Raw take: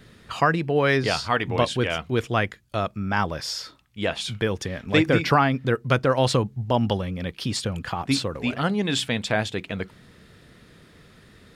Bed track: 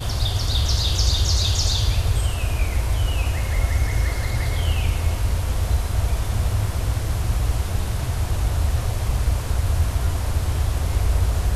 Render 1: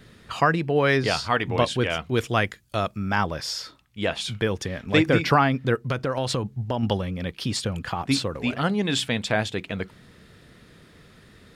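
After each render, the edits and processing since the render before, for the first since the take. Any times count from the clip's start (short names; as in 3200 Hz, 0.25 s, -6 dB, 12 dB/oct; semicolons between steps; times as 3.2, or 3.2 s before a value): 2.14–3.16 high shelf 4400 Hz +7 dB; 5.8–6.83 compressor, threshold -21 dBFS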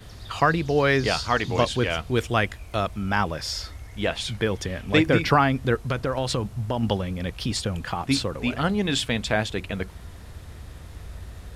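add bed track -19.5 dB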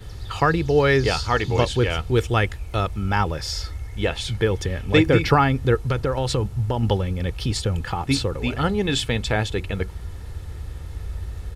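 low shelf 250 Hz +6.5 dB; comb 2.3 ms, depth 41%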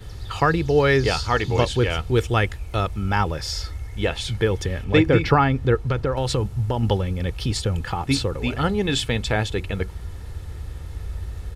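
4.84–6.17 LPF 3700 Hz 6 dB/oct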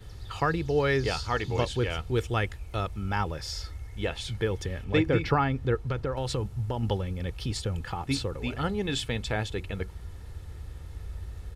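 gain -7.5 dB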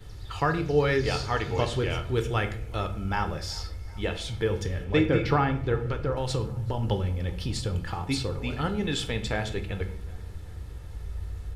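tape echo 0.38 s, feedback 61%, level -21 dB, low-pass 2800 Hz; shoebox room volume 82 m³, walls mixed, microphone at 0.37 m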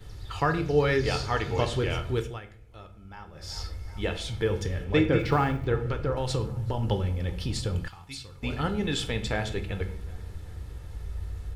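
2.11–3.62 dip -16.5 dB, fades 0.29 s; 5.19–5.66 G.711 law mismatch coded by A; 7.88–8.43 passive tone stack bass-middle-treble 5-5-5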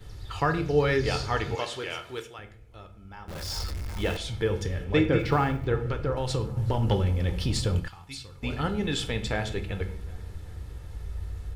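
1.55–2.39 HPF 860 Hz 6 dB/oct; 3.28–4.17 zero-crossing step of -34 dBFS; 6.57–7.8 sample leveller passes 1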